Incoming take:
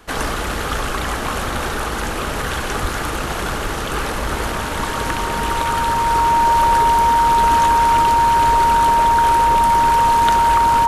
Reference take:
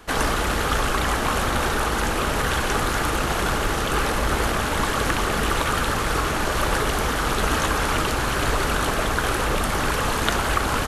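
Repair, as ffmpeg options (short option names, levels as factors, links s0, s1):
-filter_complex "[0:a]bandreject=f=930:w=30,asplit=3[s0][s1][s2];[s0]afade=t=out:st=2.81:d=0.02[s3];[s1]highpass=f=140:w=0.5412,highpass=f=140:w=1.3066,afade=t=in:st=2.81:d=0.02,afade=t=out:st=2.93:d=0.02[s4];[s2]afade=t=in:st=2.93:d=0.02[s5];[s3][s4][s5]amix=inputs=3:normalize=0"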